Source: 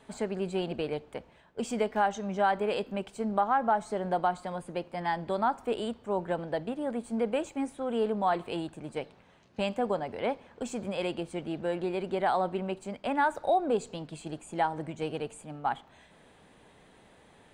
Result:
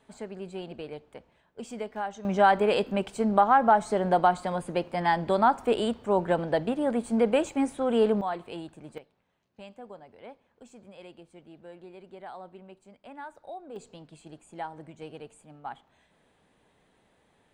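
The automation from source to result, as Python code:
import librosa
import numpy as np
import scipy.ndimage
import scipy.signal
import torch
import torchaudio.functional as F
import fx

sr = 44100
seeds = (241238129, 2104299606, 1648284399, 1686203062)

y = fx.gain(x, sr, db=fx.steps((0.0, -6.5), (2.25, 6.0), (8.21, -4.5), (8.98, -15.5), (13.76, -8.5)))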